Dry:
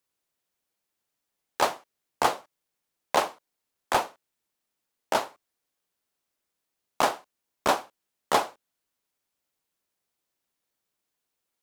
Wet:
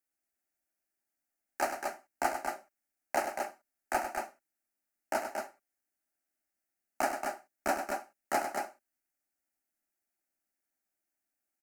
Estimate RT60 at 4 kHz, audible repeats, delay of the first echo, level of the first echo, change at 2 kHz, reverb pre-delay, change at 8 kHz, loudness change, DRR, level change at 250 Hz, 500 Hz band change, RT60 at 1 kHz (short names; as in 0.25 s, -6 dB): none, 2, 99 ms, -8.5 dB, -4.0 dB, none, -5.5 dB, -7.5 dB, none, -4.0 dB, -5.5 dB, none